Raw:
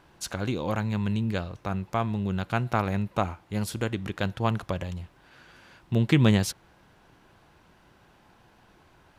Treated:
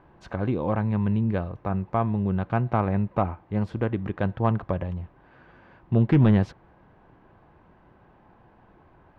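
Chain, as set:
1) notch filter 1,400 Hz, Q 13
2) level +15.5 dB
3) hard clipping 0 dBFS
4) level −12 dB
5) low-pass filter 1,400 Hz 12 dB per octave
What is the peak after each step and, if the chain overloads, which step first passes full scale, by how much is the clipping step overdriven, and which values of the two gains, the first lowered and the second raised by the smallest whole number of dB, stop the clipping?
−9.0, +6.5, 0.0, −12.0, −11.5 dBFS
step 2, 6.5 dB
step 2 +8.5 dB, step 4 −5 dB

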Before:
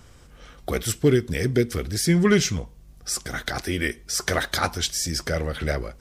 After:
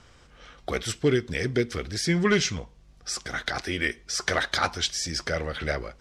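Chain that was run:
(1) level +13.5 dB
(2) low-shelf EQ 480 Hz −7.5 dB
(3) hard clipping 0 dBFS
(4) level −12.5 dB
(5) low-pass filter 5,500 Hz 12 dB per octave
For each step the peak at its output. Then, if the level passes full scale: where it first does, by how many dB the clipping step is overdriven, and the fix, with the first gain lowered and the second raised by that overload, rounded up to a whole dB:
+5.0, +3.5, 0.0, −12.5, −12.0 dBFS
step 1, 3.5 dB
step 1 +9.5 dB, step 4 −8.5 dB

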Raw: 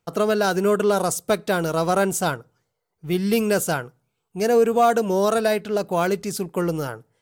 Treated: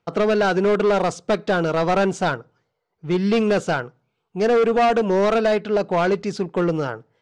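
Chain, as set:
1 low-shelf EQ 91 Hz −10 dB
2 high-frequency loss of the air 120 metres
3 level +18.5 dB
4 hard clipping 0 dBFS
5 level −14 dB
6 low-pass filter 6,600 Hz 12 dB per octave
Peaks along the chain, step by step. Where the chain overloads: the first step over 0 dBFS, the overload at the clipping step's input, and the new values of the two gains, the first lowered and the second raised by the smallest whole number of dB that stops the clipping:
−8.0, −9.0, +9.5, 0.0, −14.0, −13.5 dBFS
step 3, 9.5 dB
step 3 +8.5 dB, step 5 −4 dB

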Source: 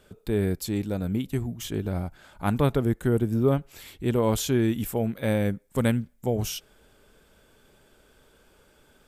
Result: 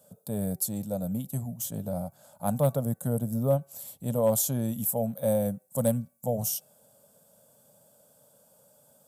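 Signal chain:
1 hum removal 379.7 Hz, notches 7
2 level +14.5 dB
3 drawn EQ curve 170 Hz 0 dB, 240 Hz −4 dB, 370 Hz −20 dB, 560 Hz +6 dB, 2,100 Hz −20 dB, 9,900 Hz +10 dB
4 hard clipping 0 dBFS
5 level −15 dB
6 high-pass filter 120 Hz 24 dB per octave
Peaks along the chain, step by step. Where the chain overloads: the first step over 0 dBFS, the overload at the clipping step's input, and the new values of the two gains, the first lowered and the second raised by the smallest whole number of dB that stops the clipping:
−9.0, +5.5, +3.5, 0.0, −15.0, −11.5 dBFS
step 2, 3.5 dB
step 2 +10.5 dB, step 5 −11 dB

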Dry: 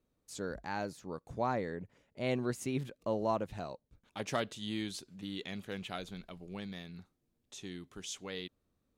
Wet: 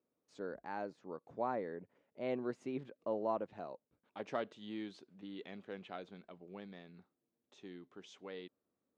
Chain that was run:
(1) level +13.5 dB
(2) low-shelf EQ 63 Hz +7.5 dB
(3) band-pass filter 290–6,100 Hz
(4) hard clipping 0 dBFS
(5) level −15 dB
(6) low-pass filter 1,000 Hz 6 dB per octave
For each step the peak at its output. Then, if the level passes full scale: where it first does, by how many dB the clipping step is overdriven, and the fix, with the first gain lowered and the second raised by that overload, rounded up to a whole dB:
−6.5, −7.0, −5.0, −5.0, −20.0, −23.5 dBFS
no step passes full scale

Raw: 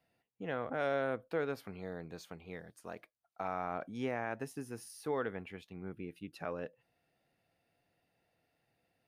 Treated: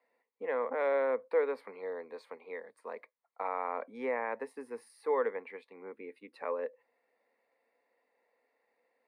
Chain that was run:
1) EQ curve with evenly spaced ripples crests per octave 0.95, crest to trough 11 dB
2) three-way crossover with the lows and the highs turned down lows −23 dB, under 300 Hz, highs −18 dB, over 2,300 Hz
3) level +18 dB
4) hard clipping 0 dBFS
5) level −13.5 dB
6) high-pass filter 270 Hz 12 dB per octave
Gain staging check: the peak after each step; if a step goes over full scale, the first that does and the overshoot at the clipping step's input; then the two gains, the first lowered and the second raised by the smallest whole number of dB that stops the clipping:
−21.5, −22.0, −4.0, −4.0, −17.5, −18.0 dBFS
no step passes full scale

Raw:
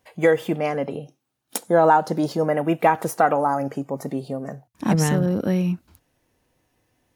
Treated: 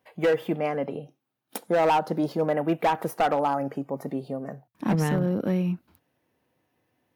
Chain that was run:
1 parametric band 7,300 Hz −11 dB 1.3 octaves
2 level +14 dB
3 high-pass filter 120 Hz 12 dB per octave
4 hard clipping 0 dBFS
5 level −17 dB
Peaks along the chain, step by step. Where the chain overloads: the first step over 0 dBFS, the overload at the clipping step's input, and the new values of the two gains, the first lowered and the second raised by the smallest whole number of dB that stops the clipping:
−5.5, +8.5, +9.0, 0.0, −17.0 dBFS
step 2, 9.0 dB
step 2 +5 dB, step 5 −8 dB

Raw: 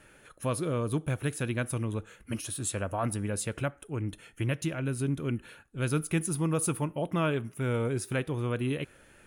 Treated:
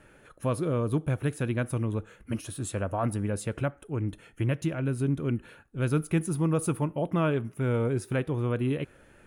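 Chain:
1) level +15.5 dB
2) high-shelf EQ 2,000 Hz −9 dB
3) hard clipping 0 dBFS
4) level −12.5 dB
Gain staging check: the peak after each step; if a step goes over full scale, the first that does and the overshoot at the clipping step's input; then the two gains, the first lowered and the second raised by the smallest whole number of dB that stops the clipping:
−0.5, −2.0, −2.0, −14.5 dBFS
no step passes full scale

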